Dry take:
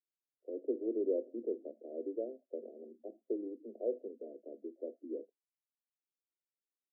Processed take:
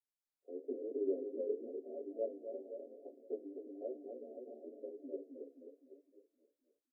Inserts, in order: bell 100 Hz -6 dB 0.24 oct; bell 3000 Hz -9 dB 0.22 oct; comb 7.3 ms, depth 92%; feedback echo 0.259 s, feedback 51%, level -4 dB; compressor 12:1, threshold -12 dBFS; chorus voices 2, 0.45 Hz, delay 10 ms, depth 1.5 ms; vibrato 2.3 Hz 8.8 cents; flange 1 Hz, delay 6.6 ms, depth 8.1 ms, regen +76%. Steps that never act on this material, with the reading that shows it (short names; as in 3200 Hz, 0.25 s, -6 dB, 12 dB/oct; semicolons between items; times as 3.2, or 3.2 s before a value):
bell 100 Hz: input band starts at 200 Hz; bell 3000 Hz: input band ends at 760 Hz; compressor, threshold -12 dBFS: input peak -20.0 dBFS